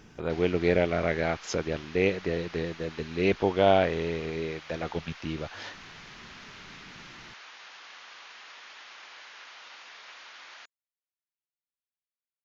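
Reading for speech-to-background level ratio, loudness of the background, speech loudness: 17.5 dB, −46.0 LKFS, −28.5 LKFS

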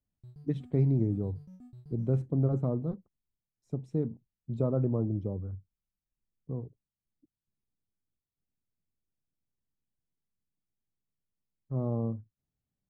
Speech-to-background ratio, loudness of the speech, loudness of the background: 20.0 dB, −32.0 LKFS, −52.0 LKFS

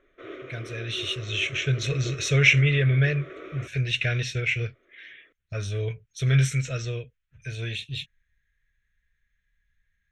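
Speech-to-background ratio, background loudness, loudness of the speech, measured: 17.0 dB, −42.0 LKFS, −25.0 LKFS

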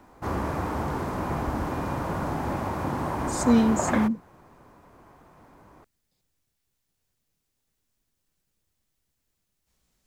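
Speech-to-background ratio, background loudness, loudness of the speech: 5.5 dB, −29.5 LKFS, −24.0 LKFS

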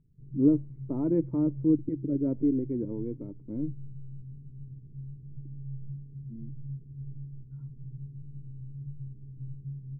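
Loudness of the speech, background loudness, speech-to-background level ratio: −29.0 LKFS, −43.5 LKFS, 14.5 dB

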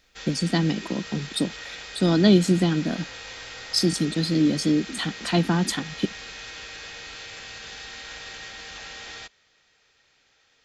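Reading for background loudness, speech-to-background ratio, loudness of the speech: −37.0 LKFS, 13.5 dB, −23.5 LKFS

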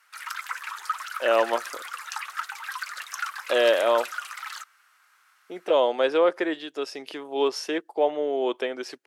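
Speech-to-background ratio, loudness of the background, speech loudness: 9.0 dB, −34.0 LKFS, −25.0 LKFS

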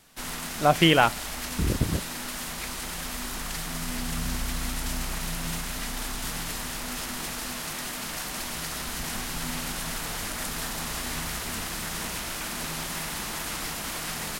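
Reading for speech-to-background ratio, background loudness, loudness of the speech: 8.5 dB, −32.0 LKFS, −23.5 LKFS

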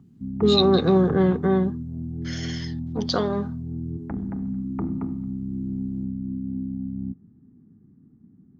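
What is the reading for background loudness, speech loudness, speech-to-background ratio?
−31.0 LKFS, −21.5 LKFS, 9.5 dB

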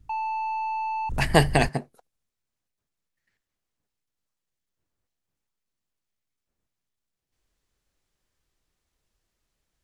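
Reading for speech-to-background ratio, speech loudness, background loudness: 7.5 dB, −23.0 LKFS, −30.5 LKFS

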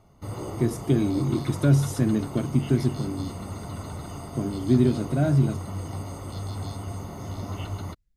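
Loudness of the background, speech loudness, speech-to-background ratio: −35.5 LKFS, −24.5 LKFS, 11.0 dB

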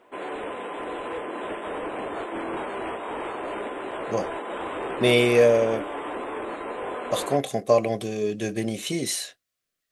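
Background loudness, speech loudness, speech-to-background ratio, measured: −32.5 LKFS, −23.5 LKFS, 9.0 dB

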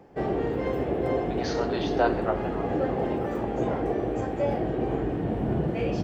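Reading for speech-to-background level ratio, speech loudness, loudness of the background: −5.0 dB, −33.0 LKFS, −28.0 LKFS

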